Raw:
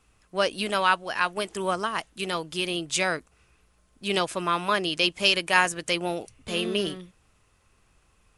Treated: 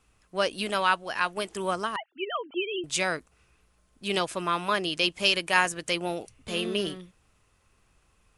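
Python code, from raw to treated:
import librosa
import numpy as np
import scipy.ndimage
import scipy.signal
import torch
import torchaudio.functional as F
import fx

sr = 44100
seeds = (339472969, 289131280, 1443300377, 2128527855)

y = fx.sine_speech(x, sr, at=(1.96, 2.84))
y = y * 10.0 ** (-2.0 / 20.0)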